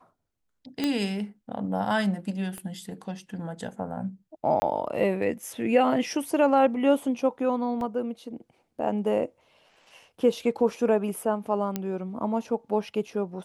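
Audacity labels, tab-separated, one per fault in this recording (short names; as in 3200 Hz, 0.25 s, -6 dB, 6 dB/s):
0.840000	0.840000	pop -13 dBFS
2.580000	2.580000	pop -24 dBFS
4.600000	4.620000	gap 20 ms
7.810000	7.810000	gap 2.1 ms
11.760000	11.760000	pop -14 dBFS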